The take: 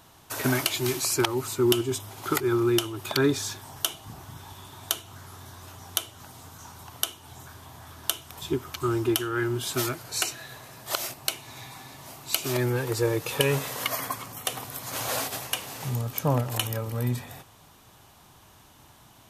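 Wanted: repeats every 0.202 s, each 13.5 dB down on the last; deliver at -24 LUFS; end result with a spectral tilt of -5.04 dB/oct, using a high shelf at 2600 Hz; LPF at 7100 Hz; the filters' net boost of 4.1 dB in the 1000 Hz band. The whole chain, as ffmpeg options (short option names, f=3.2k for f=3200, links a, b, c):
-af "lowpass=7.1k,equalizer=f=1k:t=o:g=6,highshelf=f=2.6k:g=-4.5,aecho=1:1:202|404:0.211|0.0444,volume=4.5dB"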